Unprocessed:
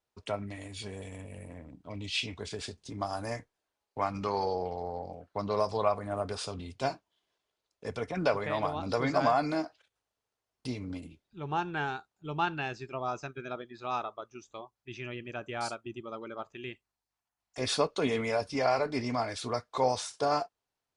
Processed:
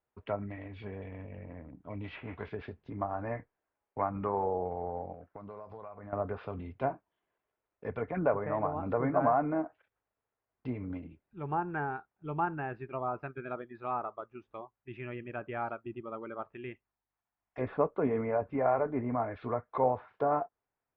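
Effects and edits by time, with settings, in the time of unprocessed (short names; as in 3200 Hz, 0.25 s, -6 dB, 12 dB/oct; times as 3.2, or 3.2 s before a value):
2.03–2.49 spectral whitening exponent 0.6
5.12–6.13 compressor 8:1, threshold -42 dBFS
whole clip: treble ducked by the level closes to 1300 Hz, closed at -28.5 dBFS; LPF 2200 Hz 24 dB/oct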